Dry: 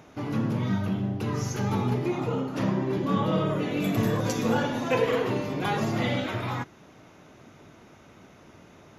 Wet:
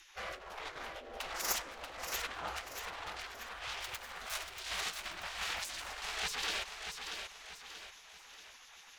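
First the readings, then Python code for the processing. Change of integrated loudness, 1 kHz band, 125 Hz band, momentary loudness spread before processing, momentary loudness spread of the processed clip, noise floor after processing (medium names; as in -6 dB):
-12.5 dB, -11.0 dB, -32.0 dB, 4 LU, 14 LU, -57 dBFS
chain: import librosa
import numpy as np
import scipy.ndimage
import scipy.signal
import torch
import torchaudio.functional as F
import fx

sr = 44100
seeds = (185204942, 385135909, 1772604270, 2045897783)

p1 = fx.self_delay(x, sr, depth_ms=0.44)
p2 = fx.over_compress(p1, sr, threshold_db=-31.0, ratio=-0.5)
p3 = fx.rotary_switch(p2, sr, hz=1.2, then_hz=8.0, switch_at_s=7.38)
p4 = fx.spec_gate(p3, sr, threshold_db=-20, keep='weak')
p5 = p4 + fx.echo_feedback(p4, sr, ms=635, feedback_pct=43, wet_db=-6.5, dry=0)
y = p5 * 10.0 ** (4.5 / 20.0)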